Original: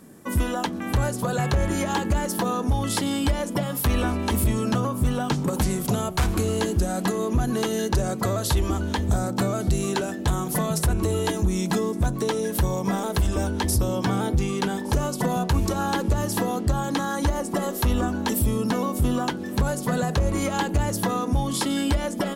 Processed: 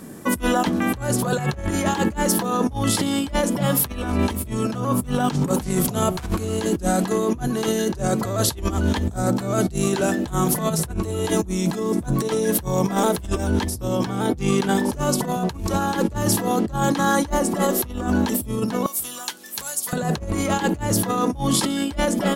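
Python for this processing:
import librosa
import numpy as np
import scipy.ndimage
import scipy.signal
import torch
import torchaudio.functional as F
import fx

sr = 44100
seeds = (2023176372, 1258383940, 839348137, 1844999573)

y = fx.differentiator(x, sr, at=(18.86, 19.93))
y = fx.over_compress(y, sr, threshold_db=-27.0, ratio=-0.5)
y = y * 10.0 ** (5.5 / 20.0)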